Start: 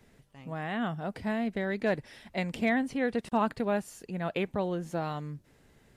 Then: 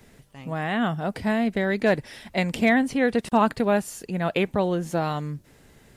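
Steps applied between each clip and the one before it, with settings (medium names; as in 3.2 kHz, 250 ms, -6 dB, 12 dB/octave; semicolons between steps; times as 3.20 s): treble shelf 5.4 kHz +4.5 dB; trim +7.5 dB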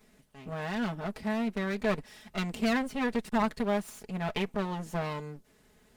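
comb filter that takes the minimum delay 4.7 ms; trim -7.5 dB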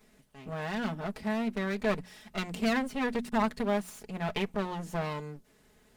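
hum notches 60/120/180/240 Hz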